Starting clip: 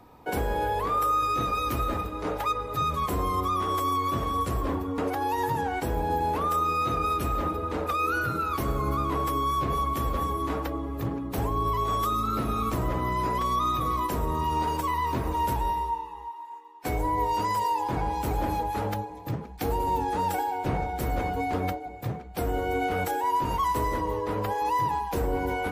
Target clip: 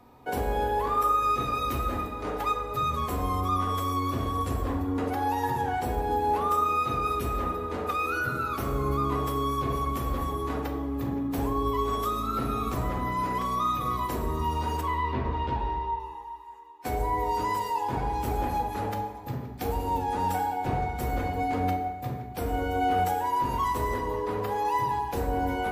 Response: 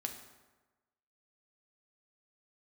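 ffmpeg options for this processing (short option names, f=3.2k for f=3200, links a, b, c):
-filter_complex "[0:a]asettb=1/sr,asplit=3[a][b][c];[a]atrim=end=14.814[d];[b]atrim=start=14.81:end=16,asetpts=PTS-STARTPTS,afade=t=in:d=0.004:c=qsin,afade=t=out:st=1.186:d=0.004:c=qsin,lowpass=f=4k:w=0.5412,lowpass=f=4k:w=1.3066[e];[c]atrim=start=15.996[f];[d][e]acrossfade=d=0.004:c1=hsin:c2=qsin[g];[g][f]acrossfade=d=0.004:c1=qsin:c2=hsin[h];[1:a]atrim=start_sample=2205[i];[h][i]afir=irnorm=-1:irlink=0,volume=-1dB"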